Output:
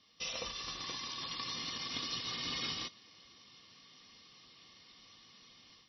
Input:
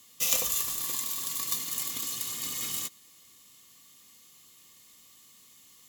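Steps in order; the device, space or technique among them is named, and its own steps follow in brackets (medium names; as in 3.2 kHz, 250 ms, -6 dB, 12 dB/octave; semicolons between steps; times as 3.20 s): low-bitrate web radio (level rider gain up to 8 dB; peak limiter -15 dBFS, peak gain reduction 10.5 dB; trim -5 dB; MP3 24 kbps 22.05 kHz)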